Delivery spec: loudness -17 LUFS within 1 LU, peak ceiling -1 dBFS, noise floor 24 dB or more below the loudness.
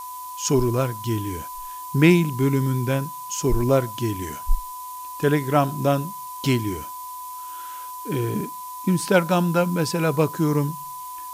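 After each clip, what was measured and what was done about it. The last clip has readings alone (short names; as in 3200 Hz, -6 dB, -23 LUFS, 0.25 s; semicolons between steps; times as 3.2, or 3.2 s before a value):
steady tone 1000 Hz; tone level -33 dBFS; noise floor -35 dBFS; noise floor target -47 dBFS; loudness -23.0 LUFS; peak -4.0 dBFS; loudness target -17.0 LUFS
-> notch 1000 Hz, Q 30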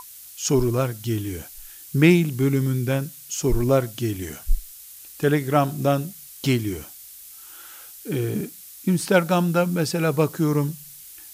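steady tone none; noise floor -43 dBFS; noise floor target -47 dBFS
-> noise print and reduce 6 dB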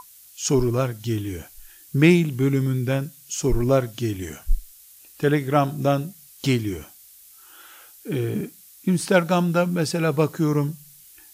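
noise floor -49 dBFS; loudness -23.0 LUFS; peak -4.5 dBFS; loudness target -17.0 LUFS
-> gain +6 dB; limiter -1 dBFS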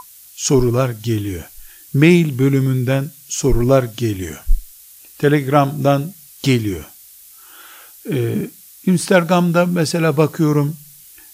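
loudness -17.0 LUFS; peak -1.0 dBFS; noise floor -43 dBFS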